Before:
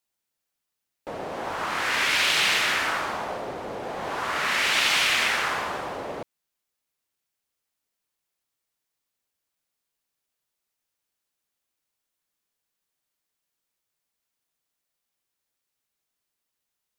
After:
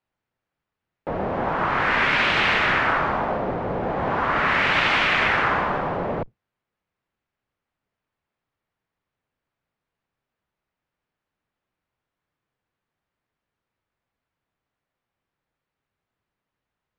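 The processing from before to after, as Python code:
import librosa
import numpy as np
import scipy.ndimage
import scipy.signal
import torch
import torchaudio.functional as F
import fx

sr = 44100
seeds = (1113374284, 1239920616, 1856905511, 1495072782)

y = fx.octave_divider(x, sr, octaves=1, level_db=2.0)
y = scipy.signal.sosfilt(scipy.signal.butter(2, 1900.0, 'lowpass', fs=sr, output='sos'), y)
y = F.gain(torch.from_numpy(y), 7.0).numpy()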